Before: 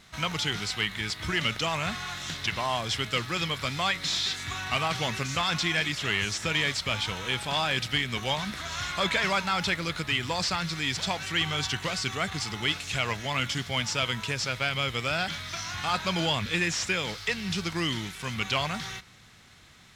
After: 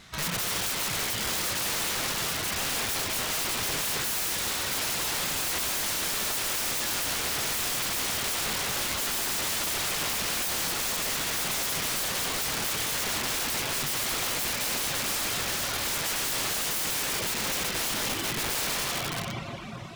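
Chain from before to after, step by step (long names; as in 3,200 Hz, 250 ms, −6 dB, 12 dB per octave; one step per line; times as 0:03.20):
convolution reverb RT60 4.1 s, pre-delay 48 ms, DRR −0.5 dB
reverb reduction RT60 0.69 s
wrap-around overflow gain 28.5 dB
level +4 dB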